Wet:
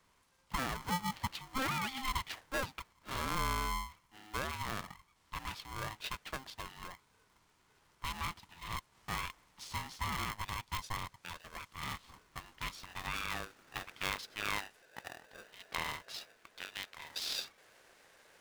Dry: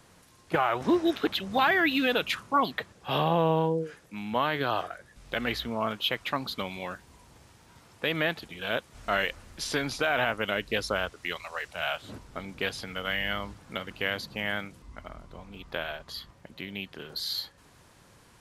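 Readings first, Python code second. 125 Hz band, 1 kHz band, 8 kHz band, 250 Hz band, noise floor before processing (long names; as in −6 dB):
−7.5 dB, −9.0 dB, −0.5 dB, −15.0 dB, −58 dBFS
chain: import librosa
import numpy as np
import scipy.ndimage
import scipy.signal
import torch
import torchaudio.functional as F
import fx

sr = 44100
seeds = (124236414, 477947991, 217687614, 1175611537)

y = fx.filter_sweep_bandpass(x, sr, from_hz=430.0, to_hz=1100.0, start_s=11.47, end_s=15.01, q=2.2)
y = np.diff(y, prepend=0.0)
y = y * np.sign(np.sin(2.0 * np.pi * 530.0 * np.arange(len(y)) / sr))
y = y * 10.0 ** (17.5 / 20.0)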